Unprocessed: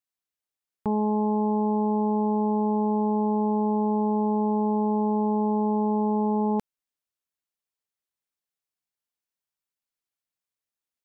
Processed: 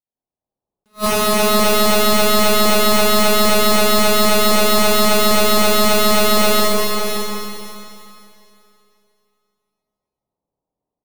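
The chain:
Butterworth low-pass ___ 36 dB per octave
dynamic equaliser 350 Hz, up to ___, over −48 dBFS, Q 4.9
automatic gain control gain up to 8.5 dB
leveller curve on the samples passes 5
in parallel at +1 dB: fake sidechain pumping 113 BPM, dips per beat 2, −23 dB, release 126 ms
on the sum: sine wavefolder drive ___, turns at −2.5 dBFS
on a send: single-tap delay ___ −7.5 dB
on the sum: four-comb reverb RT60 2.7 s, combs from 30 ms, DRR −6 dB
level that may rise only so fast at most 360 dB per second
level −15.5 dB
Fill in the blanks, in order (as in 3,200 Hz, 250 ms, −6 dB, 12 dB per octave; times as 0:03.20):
890 Hz, +3 dB, 19 dB, 571 ms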